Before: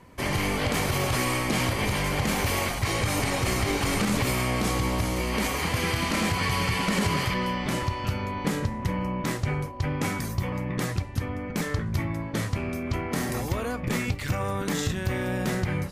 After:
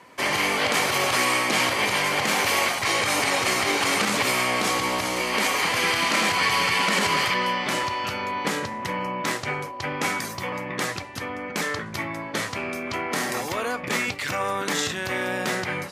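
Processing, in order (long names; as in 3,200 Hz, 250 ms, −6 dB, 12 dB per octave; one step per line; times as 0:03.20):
meter weighting curve A
level +6 dB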